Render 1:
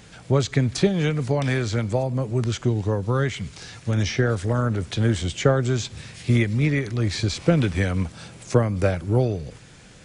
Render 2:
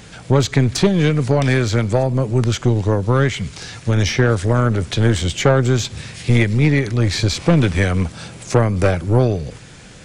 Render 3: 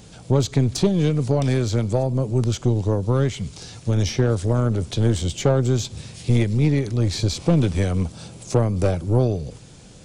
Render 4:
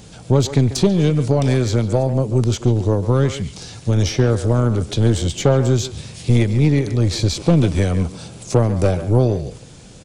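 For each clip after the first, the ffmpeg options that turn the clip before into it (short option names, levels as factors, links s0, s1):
-af "aeval=exprs='(tanh(5.62*val(0)+0.4)-tanh(0.4))/5.62':c=same,volume=2.66"
-af "equalizer=f=1800:t=o:w=1.3:g=-11,volume=0.668"
-filter_complex "[0:a]asplit=2[s0][s1];[s1]adelay=140,highpass=300,lowpass=3400,asoftclip=type=hard:threshold=0.168,volume=0.282[s2];[s0][s2]amix=inputs=2:normalize=0,volume=1.5"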